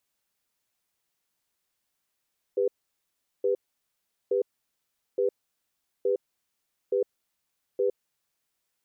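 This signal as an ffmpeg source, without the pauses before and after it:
-f lavfi -i "aevalsrc='0.0596*(sin(2*PI*399*t)+sin(2*PI*494*t))*clip(min(mod(t,0.87),0.11-mod(t,0.87))/0.005,0,1)':d=5.4:s=44100"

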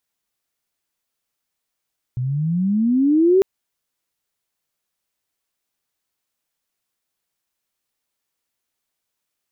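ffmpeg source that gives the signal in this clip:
-f lavfi -i "aevalsrc='pow(10,(-10+10*(t/1.25-1))/20)*sin(2*PI*121*1.25/(20.5*log(2)/12)*(exp(20.5*log(2)/12*t/1.25)-1))':d=1.25:s=44100"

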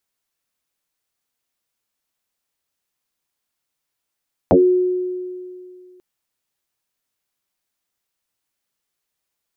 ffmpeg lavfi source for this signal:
-f lavfi -i "aevalsrc='0.447*pow(10,-3*t/2.33)*sin(2*PI*364*t+5.6*pow(10,-3*t/0.21)*sin(2*PI*0.25*364*t))':d=1.49:s=44100"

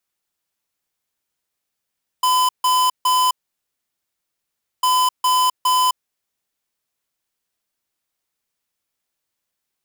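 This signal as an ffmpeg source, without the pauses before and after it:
-f lavfi -i "aevalsrc='0.158*(2*lt(mod(1010*t,1),0.5)-1)*clip(min(mod(mod(t,2.6),0.41),0.26-mod(mod(t,2.6),0.41))/0.005,0,1)*lt(mod(t,2.6),1.23)':d=5.2:s=44100"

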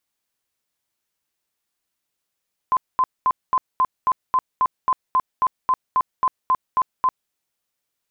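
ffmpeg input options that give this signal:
-f lavfi -i "aevalsrc='0.2*sin(2*PI*1030*mod(t,0.27))*lt(mod(t,0.27),50/1030)':d=4.59:s=44100"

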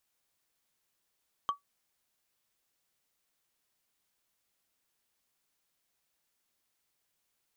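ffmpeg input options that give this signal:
-f lavfi -i "aevalsrc='0.075*pow(10,-3*t/0.13)*sin(2*PI*1140*t)+0.0211*pow(10,-3*t/0.038)*sin(2*PI*3143*t)+0.00596*pow(10,-3*t/0.017)*sin(2*PI*6160.6*t)+0.00168*pow(10,-3*t/0.009)*sin(2*PI*10183.6*t)+0.000473*pow(10,-3*t/0.006)*sin(2*PI*15207.6*t)':d=0.45:s=44100"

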